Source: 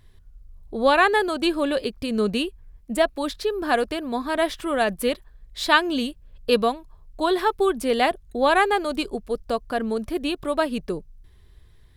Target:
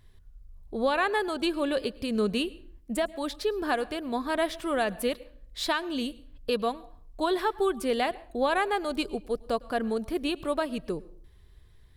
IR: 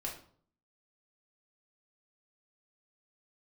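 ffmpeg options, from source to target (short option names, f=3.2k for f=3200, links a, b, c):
-filter_complex "[0:a]alimiter=limit=-12.5dB:level=0:latency=1:release=383,asplit=2[a][b];[1:a]atrim=start_sample=2205,adelay=106[c];[b][c]afir=irnorm=-1:irlink=0,volume=-21dB[d];[a][d]amix=inputs=2:normalize=0,volume=-3.5dB"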